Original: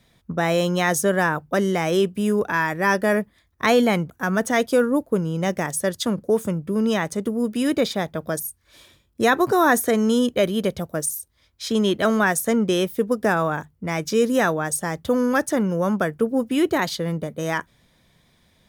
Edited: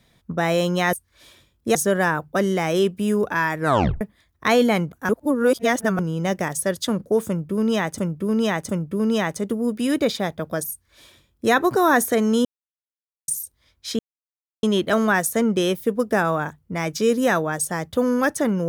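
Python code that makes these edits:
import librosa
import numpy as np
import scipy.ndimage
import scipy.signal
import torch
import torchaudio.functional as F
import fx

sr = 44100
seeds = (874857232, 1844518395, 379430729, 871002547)

y = fx.edit(x, sr, fx.tape_stop(start_s=2.76, length_s=0.43),
    fx.reverse_span(start_s=4.27, length_s=0.9),
    fx.repeat(start_s=6.45, length_s=0.71, count=3),
    fx.duplicate(start_s=8.46, length_s=0.82, to_s=0.93),
    fx.silence(start_s=10.21, length_s=0.83),
    fx.insert_silence(at_s=11.75, length_s=0.64), tone=tone)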